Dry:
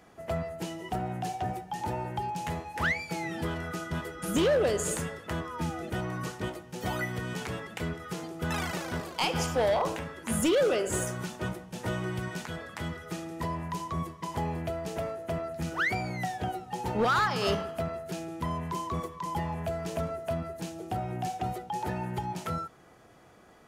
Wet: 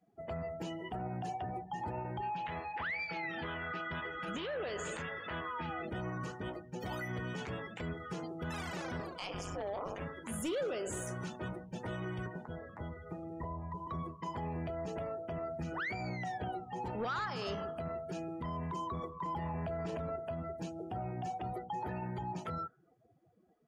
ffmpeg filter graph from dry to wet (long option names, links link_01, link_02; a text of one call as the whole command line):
ffmpeg -i in.wav -filter_complex "[0:a]asettb=1/sr,asplit=3[link_01][link_02][link_03];[link_01]atrim=end=2.214[link_04];[link_02]atrim=start=2.21:end=5.85,asetpts=PTS-STARTPTS,afade=type=in:duration=0.004:curve=qsin,afade=type=out:start_time=3.636:duration=0.004:curve=qsin,lowpass=3200,tiltshelf=frequency=790:gain=-7,acompressor=mode=upward:threshold=-33dB:ratio=2.5:attack=3.2:release=140:knee=2.83:detection=peak[link_05];[link_03]atrim=start=5.846[link_06];[link_04][link_05]acrossfade=duration=0.004:curve1=hsin:curve2=qsin[link_07];[link_07][link_06]acrossfade=duration=0.004:curve1=qsin:curve2=hsin,asettb=1/sr,asplit=3[link_08][link_09][link_10];[link_08]atrim=end=9.184[link_11];[link_09]atrim=start=9.18:end=10.01,asetpts=PTS-STARTPTS,afade=type=in:duration=0.004:curve=qsin,afade=type=out:start_time=0.826:duration=0.004:curve=qsin,aecho=1:1:1.7:0.49,atrim=end_sample=36603,tremolo=f=200:d=0.919[link_12];[link_10]atrim=start=10.006[link_13];[link_11][link_12]acrossfade=duration=0.004:curve1=hsin:curve2=qsin[link_14];[link_14][link_13]acrossfade=duration=0.004:curve1=qsin:curve2=hsin,asettb=1/sr,asplit=3[link_15][link_16][link_17];[link_15]atrim=end=12.264[link_18];[link_16]atrim=start=12.26:end=13.87,asetpts=PTS-STARTPTS,afade=type=in:duration=0.004:curve=qsin,afade=type=out:start_time=1.606:duration=0.004:curve=qsin,asubboost=boost=6:cutoff=110,acrossover=split=460|990[link_19][link_20][link_21];[link_19]acompressor=threshold=-39dB:ratio=4[link_22];[link_20]acompressor=threshold=-40dB:ratio=4[link_23];[link_21]acompressor=threshold=-53dB:ratio=4[link_24];[link_22][link_23][link_24]amix=inputs=3:normalize=0[link_25];[link_17]atrim=start=13.866[link_26];[link_18][link_25]acrossfade=duration=0.004:curve1=hsin:curve2=qsin[link_27];[link_27][link_26]acrossfade=duration=0.004:curve1=qsin:curve2=hsin,asettb=1/sr,asplit=3[link_28][link_29][link_30];[link_28]atrim=end=19.224[link_31];[link_29]atrim=start=19.22:end=20.16,asetpts=PTS-STARTPTS,afade=type=in:duration=0.004:curve=qsin,afade=type=out:start_time=0.936:duration=0.004:curve=qsin,highshelf=frequency=3700:gain=-7,bandreject=frequency=6300:width=22,acontrast=81[link_32];[link_30]atrim=start=20.156[link_33];[link_31][link_32]acrossfade=duration=0.004:curve1=hsin:curve2=qsin[link_34];[link_34][link_33]acrossfade=duration=0.004:curve1=qsin:curve2=hsin,afftdn=noise_reduction=26:noise_floor=-46,alimiter=level_in=5dB:limit=-24dB:level=0:latency=1:release=26,volume=-5dB,volume=-2.5dB" out.wav